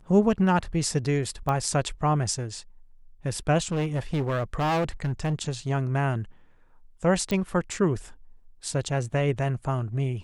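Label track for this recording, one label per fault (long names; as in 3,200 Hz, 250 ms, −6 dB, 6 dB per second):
1.490000	1.490000	click −16 dBFS
3.580000	5.340000	clipping −22 dBFS
7.310000	7.310000	click −16 dBFS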